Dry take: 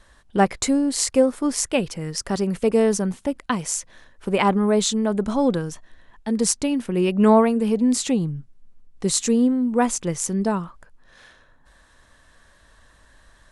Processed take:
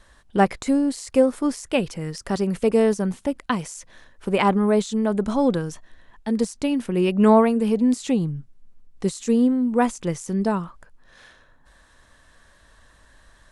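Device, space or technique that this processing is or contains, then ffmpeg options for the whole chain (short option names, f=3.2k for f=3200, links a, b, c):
de-esser from a sidechain: -filter_complex "[0:a]asplit=2[a][b];[b]highpass=f=4.9k:w=0.5412,highpass=f=4.9k:w=1.3066,apad=whole_len=596127[c];[a][c]sidechaincompress=threshold=-34dB:ratio=6:attack=0.98:release=28"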